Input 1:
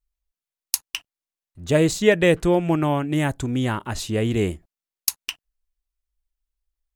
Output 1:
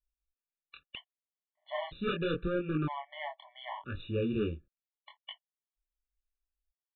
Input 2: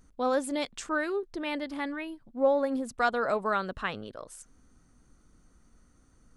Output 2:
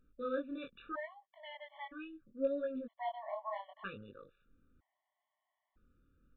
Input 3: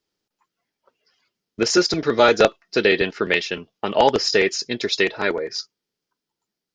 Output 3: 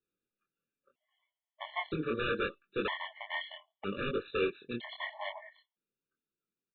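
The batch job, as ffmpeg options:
-af "aresample=11025,aeval=exprs='0.178*(abs(mod(val(0)/0.178+3,4)-2)-1)':c=same,aresample=44100,flanger=delay=20:depth=6:speed=0.74,aresample=8000,aresample=44100,afftfilt=real='re*gt(sin(2*PI*0.52*pts/sr)*(1-2*mod(floor(b*sr/1024/580),2)),0)':imag='im*gt(sin(2*PI*0.52*pts/sr)*(1-2*mod(floor(b*sr/1024/580),2)),0)':win_size=1024:overlap=0.75,volume=-6dB"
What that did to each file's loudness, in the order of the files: -13.5, -11.5, -16.5 LU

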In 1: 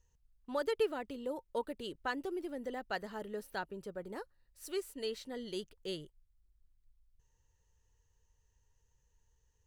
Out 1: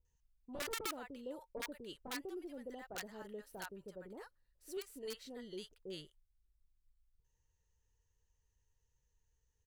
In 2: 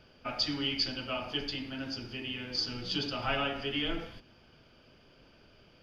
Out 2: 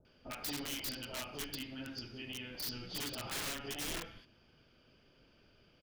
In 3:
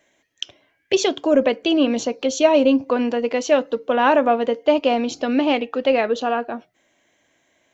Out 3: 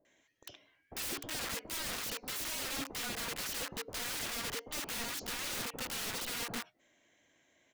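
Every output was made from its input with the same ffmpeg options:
-filter_complex "[0:a]alimiter=limit=-13.5dB:level=0:latency=1:release=58,aeval=exprs='(mod(23.7*val(0)+1,2)-1)/23.7':c=same,acrossover=split=820[a][b];[b]adelay=50[c];[a][c]amix=inputs=2:normalize=0,volume=-6dB"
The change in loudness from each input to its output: -6.5, -7.0, -18.0 LU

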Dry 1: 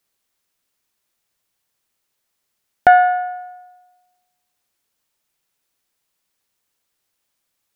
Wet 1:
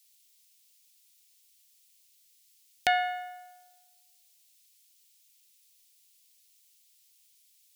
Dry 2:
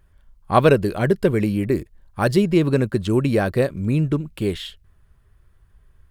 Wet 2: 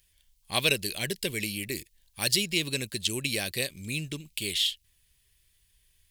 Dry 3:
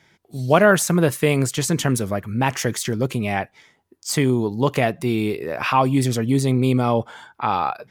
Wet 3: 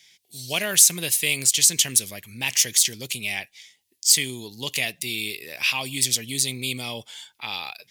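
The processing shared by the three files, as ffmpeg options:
-af "aexciter=amount=15.4:drive=5.2:freq=2.1k,volume=-16.5dB"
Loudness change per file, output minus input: -15.0, -8.5, -0.5 LU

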